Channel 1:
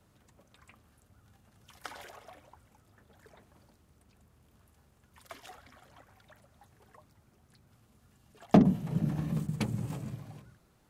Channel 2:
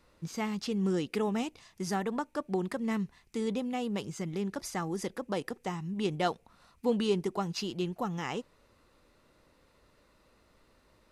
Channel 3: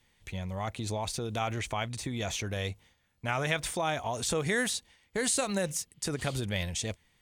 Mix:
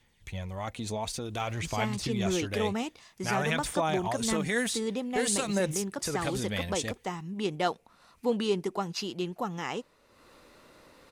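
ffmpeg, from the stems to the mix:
ffmpeg -i stem1.wav -i stem2.wav -i stem3.wav -filter_complex "[1:a]lowshelf=frequency=140:gain=-10,acompressor=mode=upward:threshold=-48dB:ratio=2.5,adelay=1400,volume=2dB[link_01];[2:a]aphaser=in_gain=1:out_gain=1:delay=4.5:decay=0.36:speed=0.53:type=sinusoidal,volume=-1dB[link_02];[link_01][link_02]amix=inputs=2:normalize=0" out.wav

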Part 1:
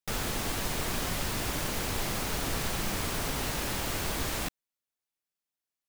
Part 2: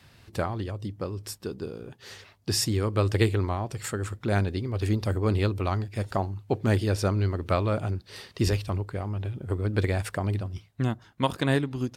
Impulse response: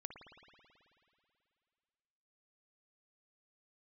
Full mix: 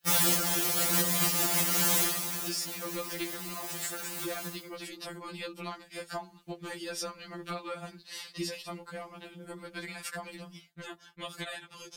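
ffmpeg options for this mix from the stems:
-filter_complex "[0:a]highpass=54,acontrast=89,crystalizer=i=1.5:c=0,volume=-1.5dB,afade=type=out:start_time=1.93:duration=0.34:silence=0.281838,asplit=2[link_01][link_02];[link_02]volume=-10.5dB[link_03];[1:a]agate=range=-33dB:threshold=-46dB:ratio=3:detection=peak,tiltshelf=frequency=1200:gain=-6,acompressor=threshold=-32dB:ratio=5,volume=1dB,asplit=2[link_04][link_05];[link_05]apad=whole_len=259679[link_06];[link_01][link_06]sidechaincompress=threshold=-42dB:ratio=3:attack=16:release=145[link_07];[link_03]aecho=0:1:67|134|201|268|335|402|469:1|0.51|0.26|0.133|0.0677|0.0345|0.0176[link_08];[link_07][link_04][link_08]amix=inputs=3:normalize=0,afftfilt=real='re*2.83*eq(mod(b,8),0)':imag='im*2.83*eq(mod(b,8),0)':win_size=2048:overlap=0.75"

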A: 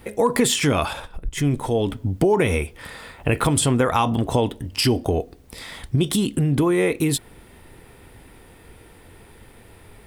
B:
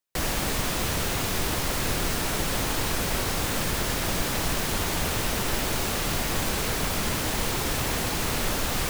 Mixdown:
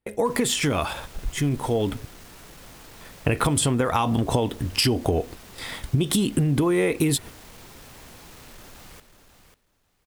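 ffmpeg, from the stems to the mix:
ffmpeg -i stem1.wav -i stem2.wav -filter_complex "[0:a]agate=range=-34dB:threshold=-37dB:ratio=16:detection=peak,dynaudnorm=framelen=900:gausssize=5:maxgain=11.5dB,volume=-2dB,asplit=3[link_01][link_02][link_03];[link_01]atrim=end=2.05,asetpts=PTS-STARTPTS,afade=type=out:start_time=2.046:duration=0.004:curve=hsin[link_04];[link_02]atrim=start=2.05:end=3.01,asetpts=PTS-STARTPTS,volume=0[link_05];[link_03]atrim=start=3.01,asetpts=PTS-STARTPTS,afade=type=in:duration=0.004:curve=hsin[link_06];[link_04][link_05][link_06]concat=n=3:v=0:a=1[link_07];[1:a]asoftclip=type=tanh:threshold=-24dB,adelay=100,volume=-16.5dB,asplit=2[link_08][link_09];[link_09]volume=-9dB,aecho=0:1:542|1084|1626:1|0.17|0.0289[link_10];[link_07][link_08][link_10]amix=inputs=3:normalize=0,acompressor=threshold=-18dB:ratio=6" out.wav

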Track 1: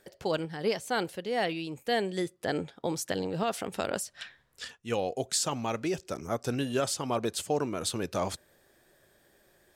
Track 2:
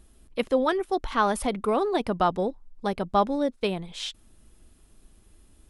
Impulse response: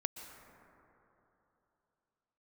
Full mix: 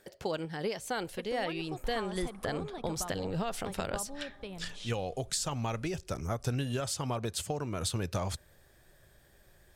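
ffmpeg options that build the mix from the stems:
-filter_complex "[0:a]acompressor=threshold=-30dB:ratio=6,volume=0.5dB[link_01];[1:a]agate=range=-33dB:threshold=-49dB:ratio=3:detection=peak,acompressor=threshold=-26dB:ratio=6,adelay=800,volume=-15dB,asplit=2[link_02][link_03];[link_03]volume=-5.5dB[link_04];[2:a]atrim=start_sample=2205[link_05];[link_04][link_05]afir=irnorm=-1:irlink=0[link_06];[link_01][link_02][link_06]amix=inputs=3:normalize=0,asubboost=boost=5:cutoff=120"

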